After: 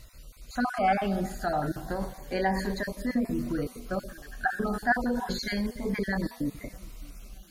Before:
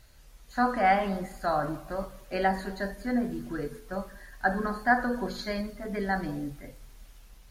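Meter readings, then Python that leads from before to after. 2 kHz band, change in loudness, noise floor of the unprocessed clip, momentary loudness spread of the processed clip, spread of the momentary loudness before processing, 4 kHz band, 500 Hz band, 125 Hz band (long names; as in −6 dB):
−1.0 dB, −0.5 dB, −54 dBFS, 17 LU, 13 LU, +3.0 dB, −0.5 dB, +3.0 dB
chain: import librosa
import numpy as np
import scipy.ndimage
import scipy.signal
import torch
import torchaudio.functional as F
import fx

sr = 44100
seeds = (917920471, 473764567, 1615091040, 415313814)

p1 = fx.spec_dropout(x, sr, seeds[0], share_pct=22)
p2 = fx.over_compress(p1, sr, threshold_db=-35.0, ratio=-1.0)
p3 = p1 + F.gain(torch.from_numpy(p2), -2.5).numpy()
p4 = fx.echo_filtered(p3, sr, ms=617, feedback_pct=39, hz=2200.0, wet_db=-24)
y = fx.notch_cascade(p4, sr, direction='rising', hz=0.3)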